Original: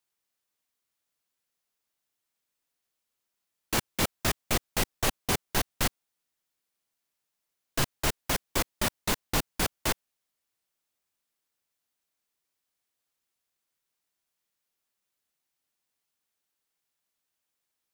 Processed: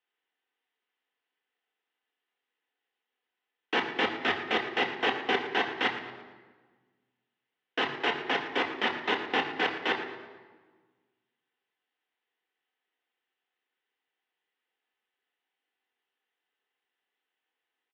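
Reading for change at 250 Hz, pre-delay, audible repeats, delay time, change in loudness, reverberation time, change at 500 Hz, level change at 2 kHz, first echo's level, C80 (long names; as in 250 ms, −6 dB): −0.5 dB, 3 ms, 3, 113 ms, +0.5 dB, 1.4 s, +3.5 dB, +5.5 dB, −13.0 dB, 9.0 dB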